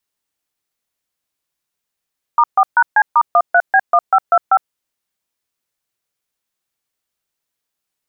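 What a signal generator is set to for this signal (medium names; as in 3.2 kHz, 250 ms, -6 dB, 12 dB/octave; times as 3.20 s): DTMF "*4#C*13B1525", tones 58 ms, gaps 136 ms, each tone -10 dBFS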